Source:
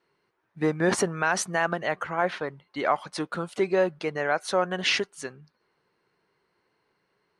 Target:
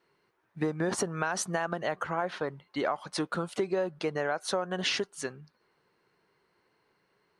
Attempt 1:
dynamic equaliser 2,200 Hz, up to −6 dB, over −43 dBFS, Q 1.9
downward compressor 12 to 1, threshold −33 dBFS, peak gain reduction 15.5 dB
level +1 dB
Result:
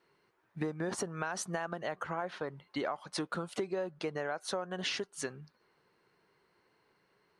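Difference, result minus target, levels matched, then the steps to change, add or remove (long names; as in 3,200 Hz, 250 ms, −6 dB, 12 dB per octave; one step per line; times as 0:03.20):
downward compressor: peak gain reduction +6 dB
change: downward compressor 12 to 1, threshold −26.5 dBFS, peak gain reduction 9.5 dB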